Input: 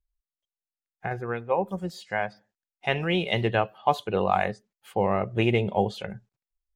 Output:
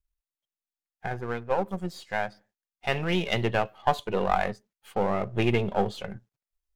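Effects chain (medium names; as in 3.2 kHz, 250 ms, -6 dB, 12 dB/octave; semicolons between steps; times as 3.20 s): partial rectifier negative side -7 dB; trim +1.5 dB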